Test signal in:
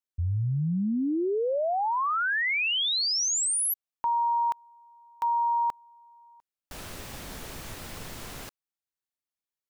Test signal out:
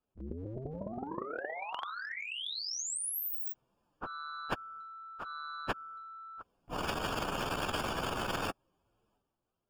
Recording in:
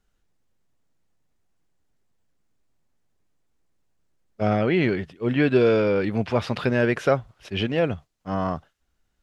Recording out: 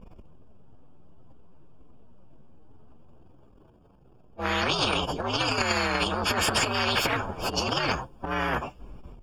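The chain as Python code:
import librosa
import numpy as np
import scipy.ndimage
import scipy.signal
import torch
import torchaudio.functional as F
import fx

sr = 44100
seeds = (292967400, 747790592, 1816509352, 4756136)

y = fx.partial_stretch(x, sr, pct=126)
y = scipy.signal.lfilter(np.full(22, 1.0 / 22), 1.0, y)
y = fx.transient(y, sr, attack_db=-11, sustain_db=10)
y = fx.spectral_comp(y, sr, ratio=10.0)
y = y * 10.0 ** (1.0 / 20.0)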